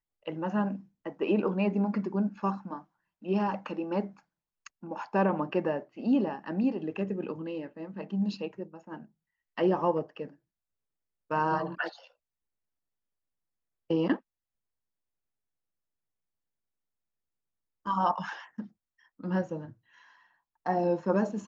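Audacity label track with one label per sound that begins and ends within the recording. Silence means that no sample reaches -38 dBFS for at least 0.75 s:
11.310000	11.890000	sound
13.900000	14.160000	sound
17.860000	19.700000	sound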